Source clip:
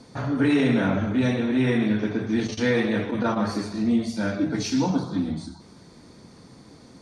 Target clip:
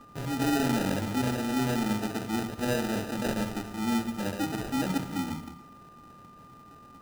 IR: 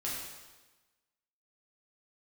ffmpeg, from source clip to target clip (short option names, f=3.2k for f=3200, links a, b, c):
-filter_complex "[0:a]acrusher=samples=40:mix=1:aa=0.000001,aeval=exprs='val(0)+0.00562*sin(2*PI*1200*n/s)':c=same,asplit=2[a][b];[1:a]atrim=start_sample=2205,adelay=94[c];[b][c]afir=irnorm=-1:irlink=0,volume=-18dB[d];[a][d]amix=inputs=2:normalize=0,volume=-6.5dB"